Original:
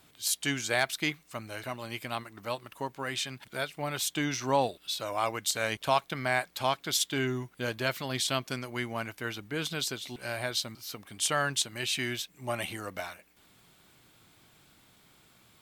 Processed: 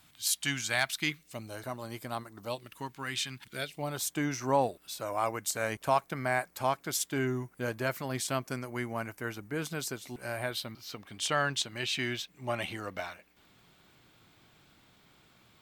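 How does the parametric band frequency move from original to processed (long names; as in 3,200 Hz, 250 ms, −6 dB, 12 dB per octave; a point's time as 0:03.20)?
parametric band −12 dB 0.98 octaves
0:00.95 430 Hz
0:01.60 2,600 Hz
0:02.37 2,600 Hz
0:02.82 570 Hz
0:03.43 570 Hz
0:04.10 3,500 Hz
0:10.32 3,500 Hz
0:10.86 11,000 Hz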